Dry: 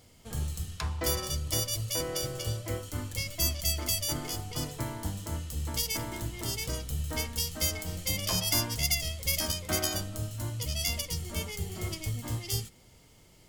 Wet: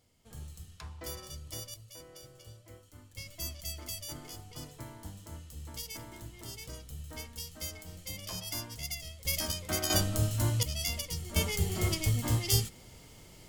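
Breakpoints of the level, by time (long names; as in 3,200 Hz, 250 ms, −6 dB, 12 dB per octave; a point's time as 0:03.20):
−12 dB
from 0:01.74 −18.5 dB
from 0:03.17 −10.5 dB
from 0:09.25 −3 dB
from 0:09.90 +6 dB
from 0:10.63 −3 dB
from 0:11.36 +5 dB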